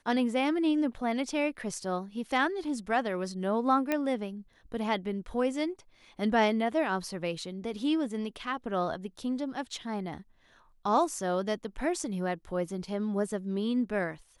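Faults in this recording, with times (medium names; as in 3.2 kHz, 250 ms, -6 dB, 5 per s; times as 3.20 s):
3.92 s: pop -15 dBFS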